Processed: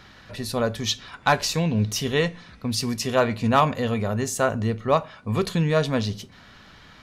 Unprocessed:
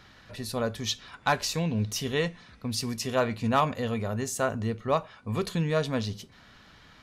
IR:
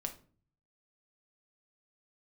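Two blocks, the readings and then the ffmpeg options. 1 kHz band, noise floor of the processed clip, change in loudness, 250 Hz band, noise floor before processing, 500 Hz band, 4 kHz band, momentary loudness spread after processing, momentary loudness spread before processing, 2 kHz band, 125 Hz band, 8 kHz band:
+5.5 dB, -49 dBFS, +5.5 dB, +5.5 dB, -55 dBFS, +5.5 dB, +5.0 dB, 9 LU, 9 LU, +5.5 dB, +5.5 dB, +4.5 dB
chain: -filter_complex "[0:a]asplit=2[a][b];[1:a]atrim=start_sample=2205,lowpass=7.7k[c];[b][c]afir=irnorm=-1:irlink=0,volume=-13dB[d];[a][d]amix=inputs=2:normalize=0,volume=4dB"

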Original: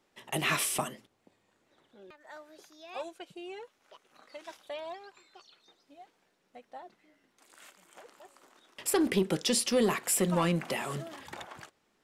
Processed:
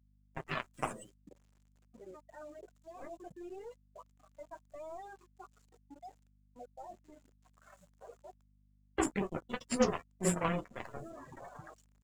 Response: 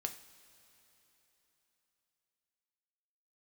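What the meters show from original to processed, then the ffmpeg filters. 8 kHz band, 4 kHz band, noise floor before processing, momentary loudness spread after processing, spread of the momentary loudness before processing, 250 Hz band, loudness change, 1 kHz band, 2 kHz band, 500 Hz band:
-10.5 dB, -14.0 dB, -74 dBFS, 24 LU, 22 LU, -6.0 dB, -8.0 dB, -4.0 dB, -7.5 dB, -5.5 dB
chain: -filter_complex "[0:a]acrossover=split=340|3300[a][b][c];[b]adelay=40[d];[c]adelay=150[e];[a][d][e]amix=inputs=3:normalize=0,aeval=exprs='0.237*(cos(1*acos(clip(val(0)/0.237,-1,1)))-cos(1*PI/2))+0.0531*(cos(2*acos(clip(val(0)/0.237,-1,1)))-cos(2*PI/2))+0.0376*(cos(7*acos(clip(val(0)/0.237,-1,1)))-cos(7*PI/2))+0.00596*(cos(8*acos(clip(val(0)/0.237,-1,1)))-cos(8*PI/2))':c=same,asplit=2[f][g];[g]adynamicsmooth=sensitivity=4:basefreq=2.1k,volume=2dB[h];[f][h]amix=inputs=2:normalize=0,highshelf=f=4.2k:g=-6.5,bandreject=f=840:w=12,flanger=delay=6.3:depth=8.9:regen=-34:speed=0.17:shape=triangular,areverse,acompressor=mode=upward:threshold=-27dB:ratio=2.5,areverse,acrusher=bits=7:mix=0:aa=0.000001,afftdn=nr=20:nf=-43,aeval=exprs='val(0)+0.000631*(sin(2*PI*50*n/s)+sin(2*PI*2*50*n/s)/2+sin(2*PI*3*50*n/s)/3+sin(2*PI*4*50*n/s)/4+sin(2*PI*5*50*n/s)/5)':c=same,equalizer=f=7.2k:t=o:w=0.46:g=12,volume=-3dB"

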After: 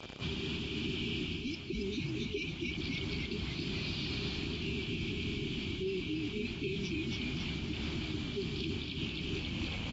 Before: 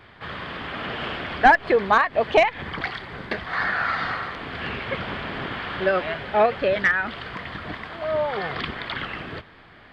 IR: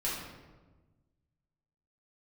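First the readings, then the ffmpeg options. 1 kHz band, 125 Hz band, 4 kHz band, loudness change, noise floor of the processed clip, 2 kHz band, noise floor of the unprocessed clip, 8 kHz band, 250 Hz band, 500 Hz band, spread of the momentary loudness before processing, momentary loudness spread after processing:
-31.0 dB, 0.0 dB, -3.0 dB, -13.0 dB, -42 dBFS, -17.5 dB, -49 dBFS, n/a, -2.5 dB, -17.0 dB, 15 LU, 2 LU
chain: -filter_complex "[0:a]lowpass=f=5.7k:t=q:w=4.7,aemphasis=mode=reproduction:type=75fm,asplit=2[a][b];[b]adelay=13,volume=-13dB[c];[a][c]amix=inputs=2:normalize=0,afftfilt=real='re*(1-between(b*sr/4096,430,2300))':imag='im*(1-between(b*sr/4096,430,2300))':win_size=4096:overlap=0.75,acrossover=split=890[d][e];[d]acrusher=bits=7:mix=0:aa=0.000001[f];[f][e]amix=inputs=2:normalize=0,asplit=8[g][h][i][j][k][l][m][n];[h]adelay=275,afreqshift=-70,volume=-3dB[o];[i]adelay=550,afreqshift=-140,volume=-9dB[p];[j]adelay=825,afreqshift=-210,volume=-15dB[q];[k]adelay=1100,afreqshift=-280,volume=-21.1dB[r];[l]adelay=1375,afreqshift=-350,volume=-27.1dB[s];[m]adelay=1650,afreqshift=-420,volume=-33.1dB[t];[n]adelay=1925,afreqshift=-490,volume=-39.1dB[u];[g][o][p][q][r][s][t][u]amix=inputs=8:normalize=0,areverse,acompressor=threshold=-39dB:ratio=6,areverse,alimiter=level_in=10.5dB:limit=-24dB:level=0:latency=1:release=227,volume=-10.5dB,highpass=44,volume=7dB" -ar 22050 -c:a aac -b:a 24k

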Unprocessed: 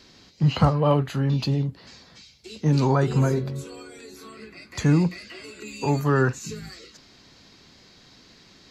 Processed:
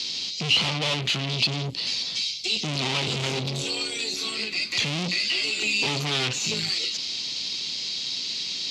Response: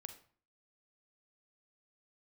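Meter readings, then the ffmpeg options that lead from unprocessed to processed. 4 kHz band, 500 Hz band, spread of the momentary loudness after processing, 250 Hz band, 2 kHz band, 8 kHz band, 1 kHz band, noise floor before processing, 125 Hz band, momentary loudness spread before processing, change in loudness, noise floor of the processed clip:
+17.5 dB, -7.5 dB, 5 LU, -9.0 dB, +8.0 dB, +10.5 dB, -6.0 dB, -53 dBFS, -9.5 dB, 22 LU, -1.5 dB, -32 dBFS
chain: -filter_complex "[0:a]aeval=exprs='(tanh(56.2*val(0)+0.7)-tanh(0.7))/56.2':c=same,aexciter=amount=7.3:drive=8.9:freq=2.5k,acrossover=split=3400[a][b];[b]acompressor=threshold=-32dB:ratio=4:attack=1:release=60[c];[a][c]amix=inputs=2:normalize=0,highpass=120,lowpass=4.5k,asplit=2[d][e];[e]alimiter=level_in=3dB:limit=-24dB:level=0:latency=1,volume=-3dB,volume=-1.5dB[f];[d][f]amix=inputs=2:normalize=0,volume=4dB"

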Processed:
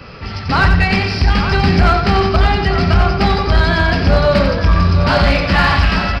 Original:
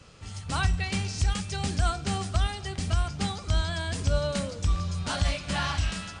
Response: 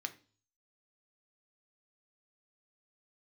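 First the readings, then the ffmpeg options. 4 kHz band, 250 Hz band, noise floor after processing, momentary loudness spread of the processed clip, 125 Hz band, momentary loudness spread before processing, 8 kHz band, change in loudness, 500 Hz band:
+12.5 dB, +17.0 dB, -26 dBFS, 3 LU, +14.0 dB, 4 LU, n/a, +15.5 dB, +18.5 dB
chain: -filter_complex "[0:a]asplit=2[a][b];[1:a]atrim=start_sample=2205,highshelf=f=4.7k:g=4[c];[b][c]afir=irnorm=-1:irlink=0,volume=2.5dB[d];[a][d]amix=inputs=2:normalize=0,aeval=exprs='0.398*(cos(1*acos(clip(val(0)/0.398,-1,1)))-cos(1*PI/2))+0.0316*(cos(3*acos(clip(val(0)/0.398,-1,1)))-cos(3*PI/2))+0.126*(cos(5*acos(clip(val(0)/0.398,-1,1)))-cos(5*PI/2))':c=same,acontrast=75,asplit=2[e][f];[f]adelay=874.6,volume=-7dB,highshelf=f=4k:g=-19.7[g];[e][g]amix=inputs=2:normalize=0,aresample=11025,aresample=44100,equalizer=f=3.5k:t=o:w=0.73:g=-10.5,asplit=2[h][i];[i]aecho=0:1:90|180|270|360:0.473|0.161|0.0547|0.0186[j];[h][j]amix=inputs=2:normalize=0,aeval=exprs='0.631*(cos(1*acos(clip(val(0)/0.631,-1,1)))-cos(1*PI/2))+0.0141*(cos(6*acos(clip(val(0)/0.631,-1,1)))-cos(6*PI/2))':c=same"

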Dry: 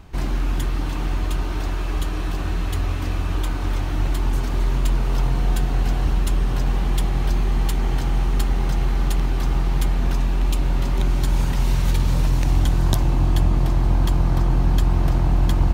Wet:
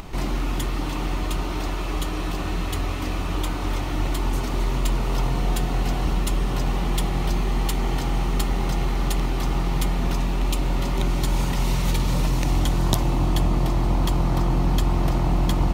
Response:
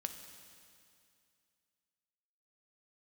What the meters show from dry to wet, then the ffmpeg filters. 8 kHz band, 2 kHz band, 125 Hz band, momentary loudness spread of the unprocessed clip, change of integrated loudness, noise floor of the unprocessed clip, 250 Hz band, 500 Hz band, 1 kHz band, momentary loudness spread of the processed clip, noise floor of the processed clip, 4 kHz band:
+2.5 dB, +0.5 dB, -3.0 dB, 6 LU, -2.0 dB, -24 dBFS, +1.0 dB, +2.0 dB, +2.0 dB, 5 LU, -26 dBFS, +2.5 dB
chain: -filter_complex "[0:a]equalizer=f=71:t=o:w=2:g=-7,bandreject=f=1.6k:w=7.8,acompressor=mode=upward:threshold=-30dB:ratio=2.5,asplit=2[a][b];[1:a]atrim=start_sample=2205[c];[b][c]afir=irnorm=-1:irlink=0,volume=-8dB[d];[a][d]amix=inputs=2:normalize=0"

